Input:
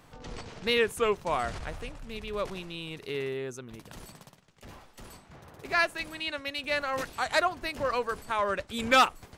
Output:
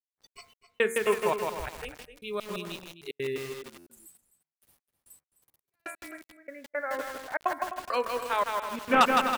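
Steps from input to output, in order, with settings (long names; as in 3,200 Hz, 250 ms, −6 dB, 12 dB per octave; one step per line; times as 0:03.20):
0:08.53–0:09.01: variable-slope delta modulation 16 kbit/s
noise reduction from a noise print of the clip's start 27 dB
0:06.11–0:07.45: Chebyshev low-pass with heavy ripple 2,200 Hz, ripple 6 dB
bit reduction 11 bits
hum removal 76.03 Hz, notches 32
gate pattern "..x.xx...xx.xxx." 169 BPM −60 dB
slap from a distant wall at 44 metres, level −11 dB
buffer that repeats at 0:03.76, samples 512, times 8
feedback echo at a low word length 161 ms, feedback 55%, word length 7 bits, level −3 dB
level +2 dB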